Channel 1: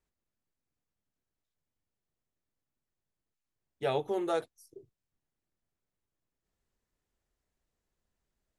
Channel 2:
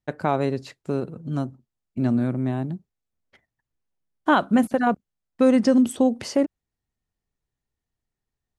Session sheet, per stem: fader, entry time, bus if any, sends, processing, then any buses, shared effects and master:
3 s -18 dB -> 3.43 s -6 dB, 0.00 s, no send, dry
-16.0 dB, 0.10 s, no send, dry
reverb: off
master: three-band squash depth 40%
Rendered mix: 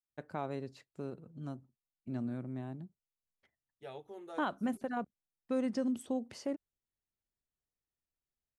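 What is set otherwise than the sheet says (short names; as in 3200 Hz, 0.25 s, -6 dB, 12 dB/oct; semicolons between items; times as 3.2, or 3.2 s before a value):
stem 1 -18.0 dB -> -28.5 dB; master: missing three-band squash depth 40%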